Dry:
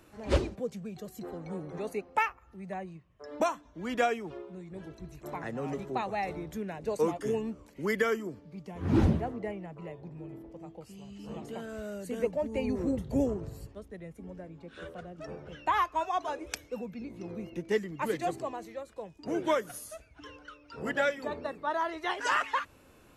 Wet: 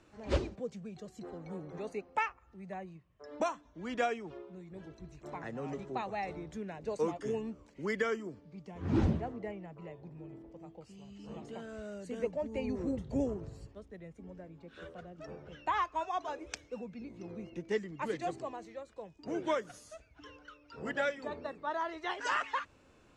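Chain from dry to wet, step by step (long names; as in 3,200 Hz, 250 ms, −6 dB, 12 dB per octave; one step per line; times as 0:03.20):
low-pass filter 7,900 Hz 24 dB per octave
level −4.5 dB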